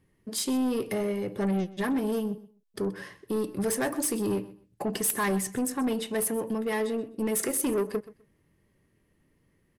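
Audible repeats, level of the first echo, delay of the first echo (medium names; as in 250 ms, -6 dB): 2, -18.0 dB, 127 ms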